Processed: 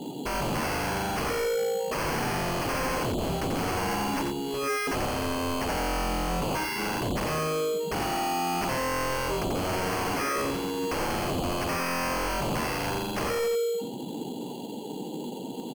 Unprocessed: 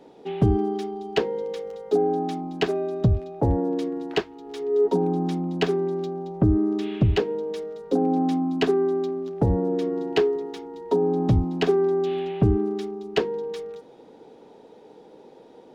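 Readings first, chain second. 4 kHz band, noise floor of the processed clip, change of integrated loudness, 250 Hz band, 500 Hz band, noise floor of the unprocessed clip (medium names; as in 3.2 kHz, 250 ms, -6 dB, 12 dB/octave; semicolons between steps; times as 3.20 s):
+3.0 dB, -37 dBFS, -4.5 dB, -7.0 dB, -6.0 dB, -50 dBFS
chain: low-pass that closes with the level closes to 1.2 kHz, closed at -16.5 dBFS; de-hum 69.65 Hz, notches 5; spectral gate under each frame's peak -20 dB strong; ten-band graphic EQ 125 Hz +6 dB, 250 Hz +6 dB, 500 Hz -10 dB, 2 kHz -3 dB; in parallel at -3 dB: compressor with a negative ratio -29 dBFS; on the sum: peak limiter -18.5 dBFS, peak gain reduction 13 dB; sample-rate reducer 3.7 kHz, jitter 0%; sine folder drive 11 dB, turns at -18.5 dBFS; on a send: delay 88 ms -5.5 dB; on the sum: trim -8 dB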